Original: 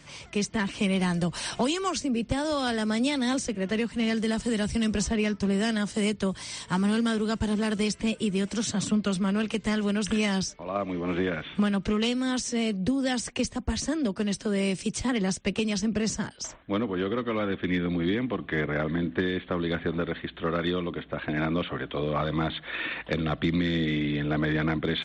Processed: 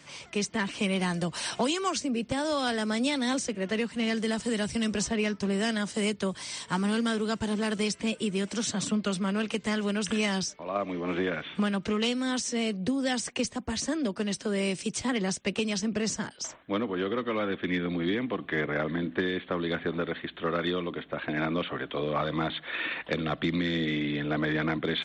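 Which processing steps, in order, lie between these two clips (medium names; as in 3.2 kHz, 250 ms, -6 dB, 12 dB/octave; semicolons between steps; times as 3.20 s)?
high-pass 220 Hz 6 dB/octave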